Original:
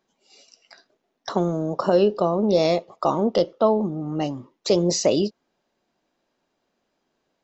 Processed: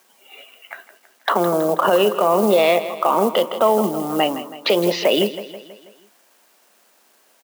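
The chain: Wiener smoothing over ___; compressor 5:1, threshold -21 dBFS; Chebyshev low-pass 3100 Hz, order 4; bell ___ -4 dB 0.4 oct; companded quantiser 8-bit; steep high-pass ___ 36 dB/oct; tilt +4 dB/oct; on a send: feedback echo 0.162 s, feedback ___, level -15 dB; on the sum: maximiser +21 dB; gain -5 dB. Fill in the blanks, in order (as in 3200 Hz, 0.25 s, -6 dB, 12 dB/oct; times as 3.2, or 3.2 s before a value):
9 samples, 300 Hz, 180 Hz, 54%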